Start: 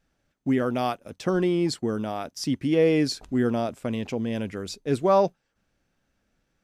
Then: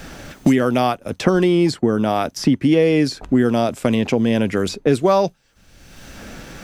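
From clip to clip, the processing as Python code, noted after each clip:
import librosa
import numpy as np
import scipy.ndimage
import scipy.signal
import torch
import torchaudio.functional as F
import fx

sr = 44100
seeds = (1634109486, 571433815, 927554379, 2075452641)

y = fx.band_squash(x, sr, depth_pct=100)
y = F.gain(torch.from_numpy(y), 7.5).numpy()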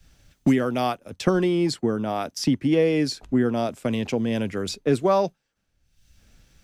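y = fx.band_widen(x, sr, depth_pct=100)
y = F.gain(torch.from_numpy(y), -6.0).numpy()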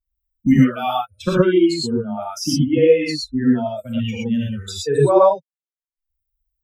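y = fx.bin_expand(x, sr, power=3.0)
y = fx.wow_flutter(y, sr, seeds[0], rate_hz=2.1, depth_cents=46.0)
y = fx.rev_gated(y, sr, seeds[1], gate_ms=140, shape='rising', drr_db=-5.0)
y = F.gain(torch.from_numpy(y), 4.0).numpy()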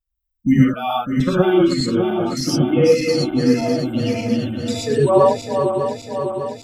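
y = fx.reverse_delay_fb(x, sr, ms=301, feedback_pct=78, wet_db=-7.0)
y = F.gain(torch.from_numpy(y), -1.0).numpy()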